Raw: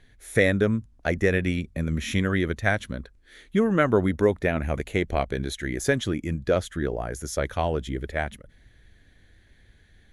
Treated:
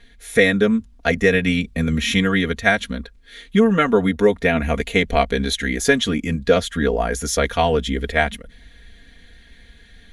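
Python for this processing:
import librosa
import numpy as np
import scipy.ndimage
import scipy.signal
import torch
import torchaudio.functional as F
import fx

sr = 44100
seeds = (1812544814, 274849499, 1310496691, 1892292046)

p1 = fx.peak_eq(x, sr, hz=3400.0, db=6.0, octaves=1.4)
p2 = p1 + 0.94 * np.pad(p1, (int(4.3 * sr / 1000.0), 0))[:len(p1)]
p3 = fx.rider(p2, sr, range_db=10, speed_s=0.5)
p4 = p2 + F.gain(torch.from_numpy(p3), 3.0).numpy()
y = F.gain(torch.from_numpy(p4), -4.5).numpy()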